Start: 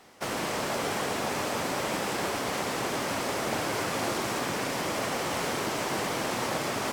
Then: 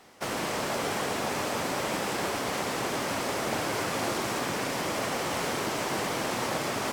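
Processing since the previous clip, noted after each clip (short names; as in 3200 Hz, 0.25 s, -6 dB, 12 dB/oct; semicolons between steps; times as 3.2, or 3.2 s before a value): nothing audible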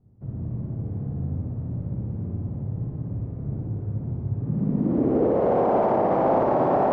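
low-pass sweep 110 Hz -> 720 Hz, 4.31–5.56; on a send: flutter echo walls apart 10 m, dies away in 1.4 s; on the sum: limiter -21.5 dBFS, peak gain reduction 8 dB; gain +8.5 dB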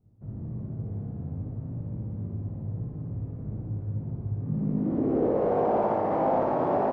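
doubler 19 ms -5 dB; gain -5.5 dB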